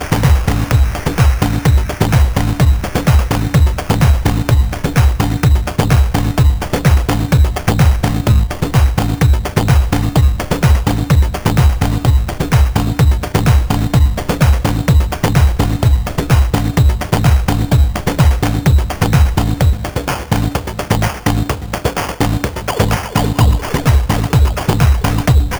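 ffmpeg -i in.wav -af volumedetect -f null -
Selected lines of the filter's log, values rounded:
mean_volume: -12.0 dB
max_volume: -1.3 dB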